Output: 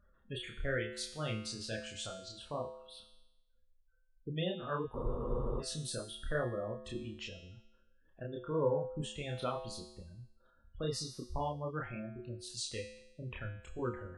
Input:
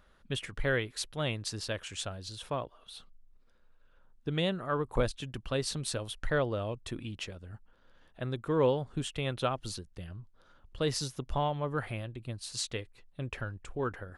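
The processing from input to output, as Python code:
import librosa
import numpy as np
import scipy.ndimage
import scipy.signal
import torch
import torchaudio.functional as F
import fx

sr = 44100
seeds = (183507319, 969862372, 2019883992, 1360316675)

y = fx.spec_gate(x, sr, threshold_db=-20, keep='strong')
y = fx.chorus_voices(y, sr, voices=4, hz=0.79, base_ms=29, depth_ms=4.4, mix_pct=45)
y = fx.comb_fb(y, sr, f0_hz=73.0, decay_s=0.9, harmonics='odd', damping=0.0, mix_pct=80)
y = fx.spec_freeze(y, sr, seeds[0], at_s=4.98, hold_s=0.63)
y = y * librosa.db_to_amplitude(10.0)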